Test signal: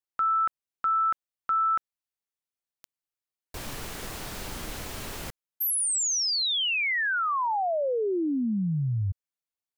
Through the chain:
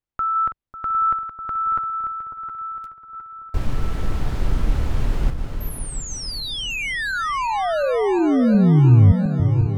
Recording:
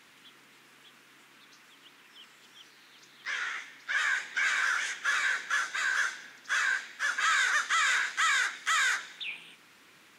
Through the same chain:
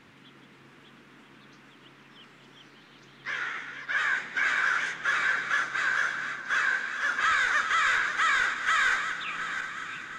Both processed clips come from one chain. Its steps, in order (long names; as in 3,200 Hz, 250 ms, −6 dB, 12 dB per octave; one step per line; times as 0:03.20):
feedback delay that plays each chunk backwards 356 ms, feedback 66%, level −9 dB
RIAA equalisation playback
delay that swaps between a low-pass and a high-pass 547 ms, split 1,300 Hz, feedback 54%, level −10.5 dB
level +3.5 dB